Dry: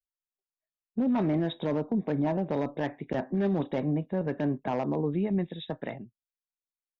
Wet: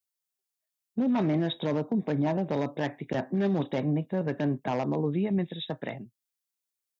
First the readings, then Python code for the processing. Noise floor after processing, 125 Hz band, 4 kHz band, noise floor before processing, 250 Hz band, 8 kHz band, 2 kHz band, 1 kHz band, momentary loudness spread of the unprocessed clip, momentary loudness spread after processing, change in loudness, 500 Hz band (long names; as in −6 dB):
below −85 dBFS, +1.5 dB, +5.5 dB, below −85 dBFS, +0.5 dB, can't be measured, +2.5 dB, +0.5 dB, 9 LU, 8 LU, +0.5 dB, +0.5 dB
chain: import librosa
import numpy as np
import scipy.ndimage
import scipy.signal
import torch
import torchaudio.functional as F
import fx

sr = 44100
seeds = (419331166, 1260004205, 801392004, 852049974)

y = fx.dynamic_eq(x, sr, hz=120.0, q=2.1, threshold_db=-47.0, ratio=4.0, max_db=4)
y = scipy.signal.sosfilt(scipy.signal.butter(2, 77.0, 'highpass', fs=sr, output='sos'), y)
y = fx.high_shelf(y, sr, hz=3400.0, db=10.0)